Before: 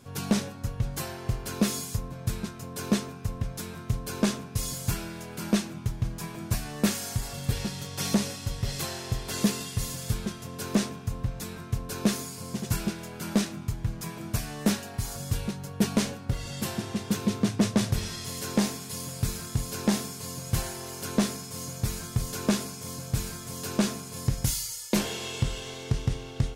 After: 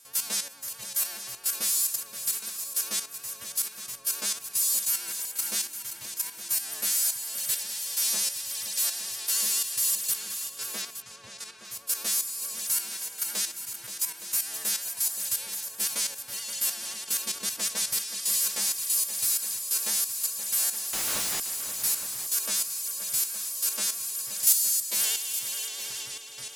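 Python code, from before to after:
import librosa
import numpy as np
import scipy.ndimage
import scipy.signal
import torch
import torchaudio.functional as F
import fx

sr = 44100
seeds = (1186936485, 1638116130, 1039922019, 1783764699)

p1 = fx.freq_snap(x, sr, grid_st=2)
p2 = fx.highpass(p1, sr, hz=450.0, slope=6)
p3 = fx.level_steps(p2, sr, step_db=10)
p4 = 10.0 ** (-18.5 / 20.0) * np.tanh(p3 / 10.0 ** (-18.5 / 20.0))
p5 = fx.tilt_eq(p4, sr, slope=3.0)
p6 = fx.vibrato(p5, sr, rate_hz=9.4, depth_cents=52.0)
p7 = fx.air_absorb(p6, sr, metres=100.0, at=(10.15, 11.65))
p8 = fx.schmitt(p7, sr, flips_db=-37.0, at=(20.93, 21.4))
p9 = p8 + fx.echo_multitap(p8, sr, ms=(525, 867), db=(-10.5, -12.0), dry=0)
y = p9 * 10.0 ** (-4.0 / 20.0)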